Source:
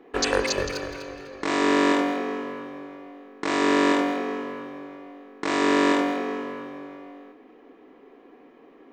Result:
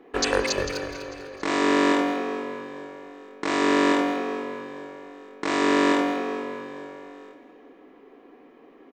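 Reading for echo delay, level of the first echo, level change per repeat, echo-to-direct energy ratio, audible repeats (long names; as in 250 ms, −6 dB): 447 ms, −21.0 dB, −4.5 dB, −19.5 dB, 3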